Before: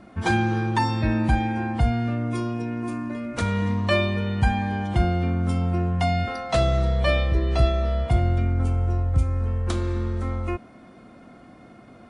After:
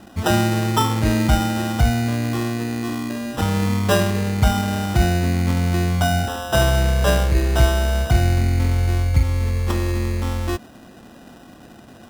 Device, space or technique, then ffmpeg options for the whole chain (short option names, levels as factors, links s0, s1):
crushed at another speed: -af "asetrate=22050,aresample=44100,acrusher=samples=40:mix=1:aa=0.000001,asetrate=88200,aresample=44100,volume=1.58"